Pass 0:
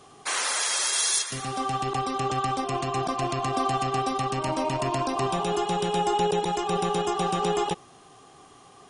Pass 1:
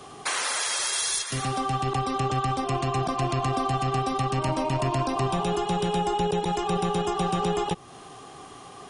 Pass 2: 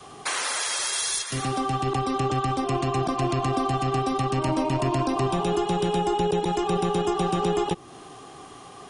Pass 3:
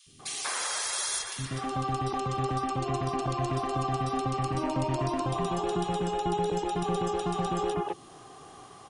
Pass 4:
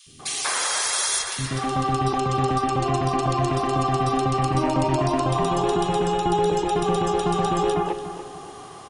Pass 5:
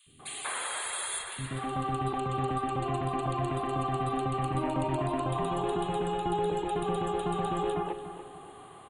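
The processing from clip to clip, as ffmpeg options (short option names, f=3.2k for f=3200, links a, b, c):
-filter_complex "[0:a]equalizer=f=6.8k:w=1.5:g=-2.5,acrossover=split=160[a][b];[b]acompressor=threshold=-36dB:ratio=2.5[c];[a][c]amix=inputs=2:normalize=0,volume=7.5dB"
-af "adynamicequalizer=threshold=0.00631:dfrequency=320:dqfactor=2.5:tfrequency=320:tqfactor=2.5:attack=5:release=100:ratio=0.375:range=3.5:mode=boostabove:tftype=bell"
-filter_complex "[0:a]acrossover=split=300|2600[a][b][c];[a]adelay=60[d];[b]adelay=190[e];[d][e][c]amix=inputs=3:normalize=0,volume=-4dB"
-filter_complex "[0:a]bandreject=f=60:t=h:w=6,bandreject=f=120:t=h:w=6,bandreject=f=180:t=h:w=6,asplit=2[a][b];[b]adelay=289,lowpass=f=4.2k:p=1,volume=-10.5dB,asplit=2[c][d];[d]adelay=289,lowpass=f=4.2k:p=1,volume=0.4,asplit=2[e][f];[f]adelay=289,lowpass=f=4.2k:p=1,volume=0.4,asplit=2[g][h];[h]adelay=289,lowpass=f=4.2k:p=1,volume=0.4[i];[a][c][e][g][i]amix=inputs=5:normalize=0,volume=7.5dB"
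-af "asuperstop=centerf=5500:order=4:qfactor=1.3,volume=-8.5dB"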